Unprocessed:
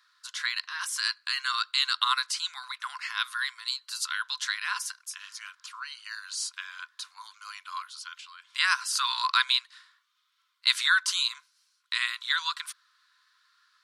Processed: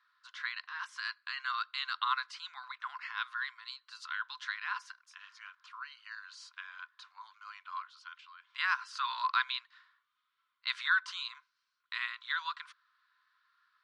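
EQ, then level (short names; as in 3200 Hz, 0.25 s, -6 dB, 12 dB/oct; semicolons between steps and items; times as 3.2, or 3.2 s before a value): tape spacing loss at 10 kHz 34 dB; 0.0 dB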